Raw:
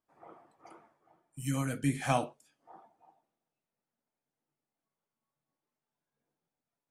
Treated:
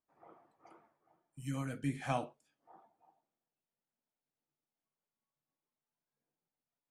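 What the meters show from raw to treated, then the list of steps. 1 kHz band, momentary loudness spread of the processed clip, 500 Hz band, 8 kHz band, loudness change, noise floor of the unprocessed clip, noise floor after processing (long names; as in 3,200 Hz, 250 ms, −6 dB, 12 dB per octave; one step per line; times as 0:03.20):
−6.0 dB, 10 LU, −6.0 dB, −12.0 dB, −6.5 dB, below −85 dBFS, below −85 dBFS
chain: high-shelf EQ 6,800 Hz −10 dB
level −6 dB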